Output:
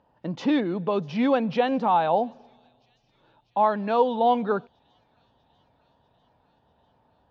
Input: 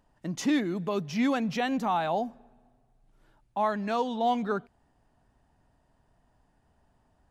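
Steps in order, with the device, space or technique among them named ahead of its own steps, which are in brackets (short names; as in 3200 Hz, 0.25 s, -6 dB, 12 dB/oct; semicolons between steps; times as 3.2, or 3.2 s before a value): guitar cabinet (speaker cabinet 83–4100 Hz, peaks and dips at 510 Hz +9 dB, 900 Hz +6 dB, 2000 Hz -5 dB); thin delay 0.645 s, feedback 71%, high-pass 4700 Hz, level -20.5 dB; gain +2.5 dB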